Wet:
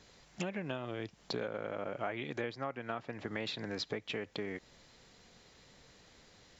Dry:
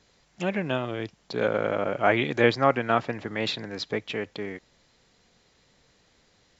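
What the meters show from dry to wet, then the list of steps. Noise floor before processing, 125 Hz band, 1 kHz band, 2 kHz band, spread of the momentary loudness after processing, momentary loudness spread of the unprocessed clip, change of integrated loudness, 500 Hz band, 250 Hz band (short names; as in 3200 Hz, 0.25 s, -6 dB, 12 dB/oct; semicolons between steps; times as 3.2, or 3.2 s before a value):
-64 dBFS, -11.5 dB, -15.5 dB, -13.5 dB, 21 LU, 13 LU, -13.0 dB, -13.5 dB, -11.5 dB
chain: compressor 12:1, threshold -37 dBFS, peak gain reduction 23 dB; gain +2.5 dB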